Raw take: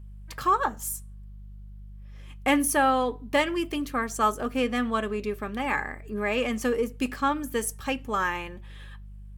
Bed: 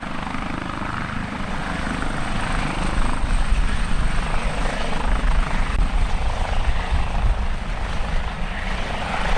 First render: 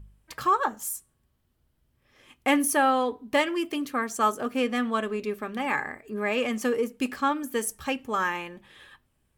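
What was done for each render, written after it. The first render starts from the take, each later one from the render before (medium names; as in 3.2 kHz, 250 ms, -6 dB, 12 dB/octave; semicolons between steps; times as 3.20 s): de-hum 50 Hz, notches 4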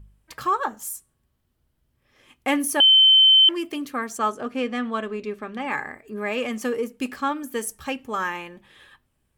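2.80–3.49 s: bleep 3.08 kHz -10.5 dBFS; 4.18–5.72 s: distance through air 55 m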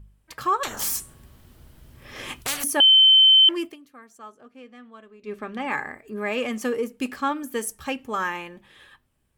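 0.63–2.64 s: spectrum-flattening compressor 10:1; 3.64–5.34 s: dip -19 dB, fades 0.12 s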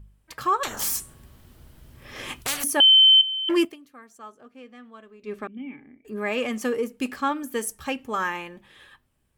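3.21–3.65 s: compressor with a negative ratio -21 dBFS, ratio -0.5; 5.47–6.05 s: cascade formant filter i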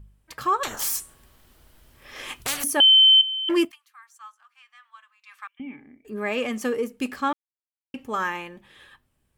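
0.76–2.40 s: peaking EQ 120 Hz -11.5 dB 2.9 oct; 3.71–5.60 s: steep high-pass 930 Hz 48 dB/octave; 7.33–7.94 s: mute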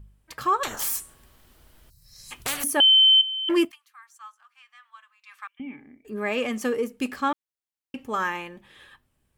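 1.90–2.32 s: time-frequency box 210–3800 Hz -27 dB; dynamic bell 5.5 kHz, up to -7 dB, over -35 dBFS, Q 1.4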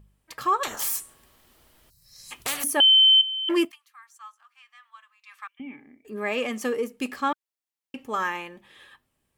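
bass shelf 140 Hz -10 dB; band-stop 1.5 kHz, Q 17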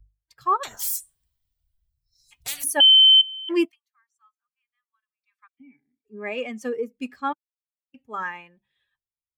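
expander on every frequency bin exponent 1.5; three bands expanded up and down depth 40%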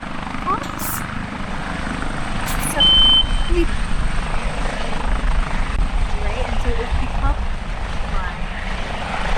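add bed +0.5 dB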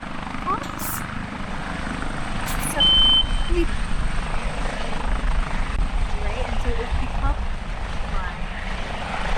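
trim -3.5 dB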